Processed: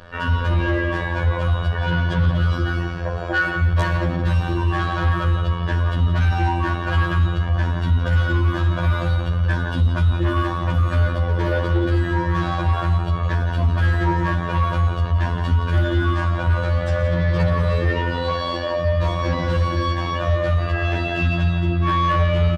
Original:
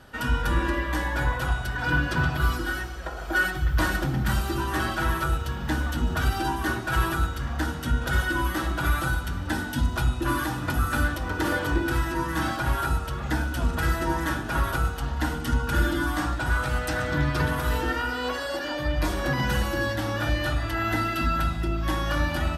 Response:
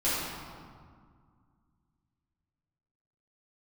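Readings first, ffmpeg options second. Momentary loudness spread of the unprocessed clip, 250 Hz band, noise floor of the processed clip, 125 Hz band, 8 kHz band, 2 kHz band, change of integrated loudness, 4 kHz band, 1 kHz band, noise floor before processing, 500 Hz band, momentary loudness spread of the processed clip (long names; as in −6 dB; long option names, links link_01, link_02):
4 LU, +3.5 dB, −25 dBFS, +10.0 dB, below −10 dB, +1.0 dB, +6.0 dB, +2.0 dB, +4.0 dB, −33 dBFS, +7.0 dB, 3 LU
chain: -filter_complex "[0:a]lowpass=3100,aecho=1:1:1.8:0.6,asplit=2[link_01][link_02];[link_02]adelay=169.1,volume=-8dB,highshelf=frequency=4000:gain=-3.8[link_03];[link_01][link_03]amix=inputs=2:normalize=0,asplit=2[link_04][link_05];[1:a]atrim=start_sample=2205,adelay=41[link_06];[link_05][link_06]afir=irnorm=-1:irlink=0,volume=-21.5dB[link_07];[link_04][link_07]amix=inputs=2:normalize=0,afftfilt=real='hypot(re,im)*cos(PI*b)':imag='0':win_size=2048:overlap=0.75,adynamicequalizer=threshold=0.00631:dfrequency=1500:dqfactor=2:tfrequency=1500:tqfactor=2:attack=5:release=100:ratio=0.375:range=3.5:mode=cutabove:tftype=bell,acontrast=31,aeval=exprs='0.531*(cos(1*acos(clip(val(0)/0.531,-1,1)))-cos(1*PI/2))+0.0944*(cos(5*acos(clip(val(0)/0.531,-1,1)))-cos(5*PI/2))':channel_layout=same"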